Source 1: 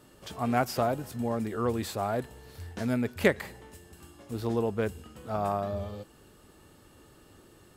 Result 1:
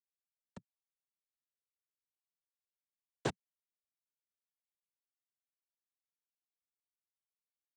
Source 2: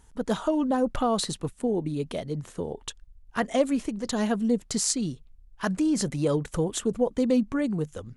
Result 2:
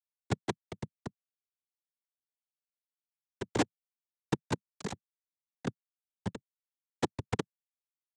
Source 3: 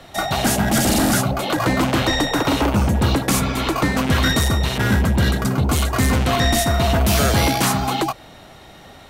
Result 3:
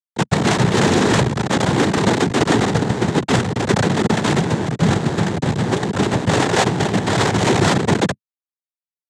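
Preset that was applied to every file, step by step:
delay 954 ms -17.5 dB; Schmitt trigger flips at -16 dBFS; noise-vocoded speech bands 6; trim +5 dB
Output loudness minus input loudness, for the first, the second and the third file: -10.0 LU, -10.5 LU, +0.5 LU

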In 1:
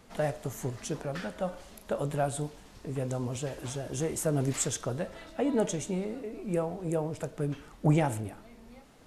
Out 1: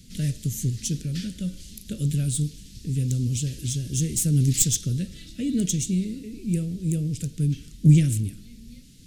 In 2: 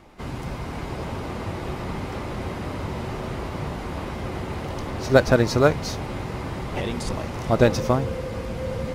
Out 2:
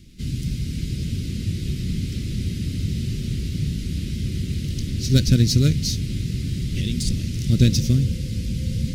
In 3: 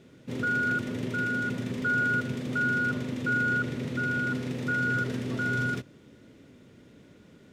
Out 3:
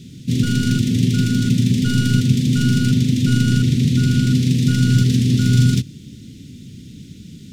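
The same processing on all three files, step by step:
tracing distortion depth 0.027 ms; Chebyshev band-stop 180–4100 Hz, order 2; peak normalisation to -3 dBFS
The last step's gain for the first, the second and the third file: +11.5 dB, +8.0 dB, +20.0 dB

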